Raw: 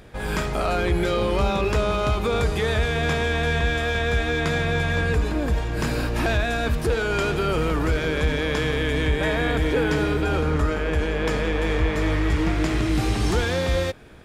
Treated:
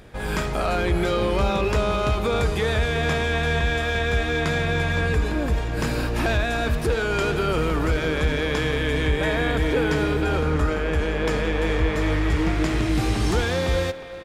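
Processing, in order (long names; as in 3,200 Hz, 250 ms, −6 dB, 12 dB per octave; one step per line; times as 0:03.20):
far-end echo of a speakerphone 360 ms, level −11 dB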